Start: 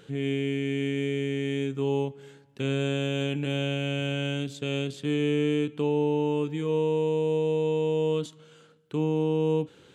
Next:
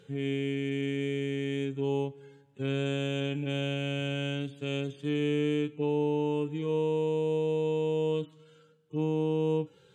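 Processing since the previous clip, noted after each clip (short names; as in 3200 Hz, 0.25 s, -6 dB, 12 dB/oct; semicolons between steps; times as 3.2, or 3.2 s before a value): median-filter separation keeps harmonic; gain -3 dB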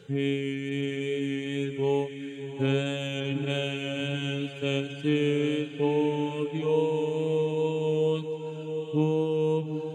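wow and flutter 19 cents; reverb removal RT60 1.4 s; diffused feedback echo 0.762 s, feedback 41%, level -8 dB; gain +6 dB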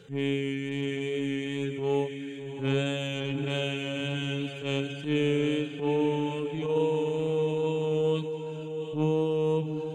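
transient shaper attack -10 dB, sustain +2 dB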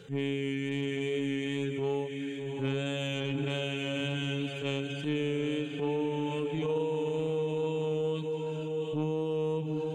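compressor, threshold -29 dBFS, peak gain reduction 8 dB; gain +1.5 dB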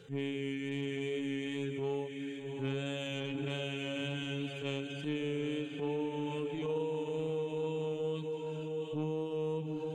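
flange 1.1 Hz, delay 2.4 ms, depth 1.7 ms, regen -84%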